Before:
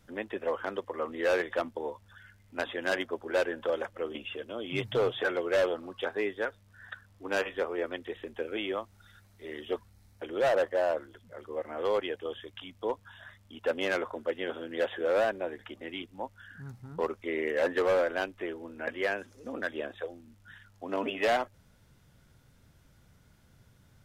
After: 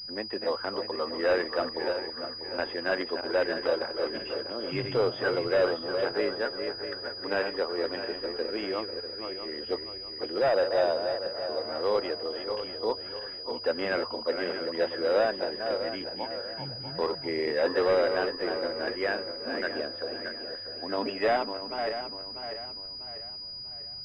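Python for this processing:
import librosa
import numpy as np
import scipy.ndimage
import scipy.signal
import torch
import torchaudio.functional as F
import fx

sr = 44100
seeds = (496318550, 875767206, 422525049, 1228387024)

y = fx.reverse_delay_fb(x, sr, ms=322, feedback_pct=63, wet_db=-6.5)
y = fx.pwm(y, sr, carrier_hz=4900.0)
y = y * 10.0 ** (1.5 / 20.0)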